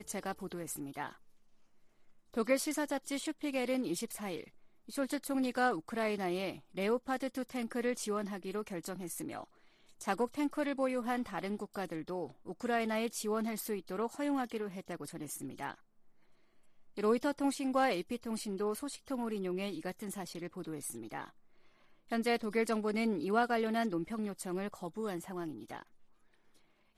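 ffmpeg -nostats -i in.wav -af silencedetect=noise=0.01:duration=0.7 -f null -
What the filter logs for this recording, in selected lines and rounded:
silence_start: 1.11
silence_end: 2.34 | silence_duration: 1.23
silence_start: 15.72
silence_end: 16.98 | silence_duration: 1.25
silence_start: 21.25
silence_end: 22.12 | silence_duration: 0.87
silence_start: 25.82
silence_end: 26.97 | silence_duration: 1.15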